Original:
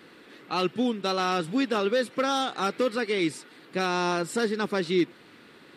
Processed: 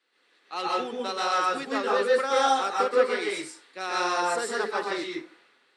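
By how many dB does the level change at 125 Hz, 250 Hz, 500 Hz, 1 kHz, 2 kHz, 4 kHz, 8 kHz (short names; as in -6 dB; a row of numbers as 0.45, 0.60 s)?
under -15 dB, -8.5 dB, +1.0 dB, +4.0 dB, +2.0 dB, -0.5 dB, +2.5 dB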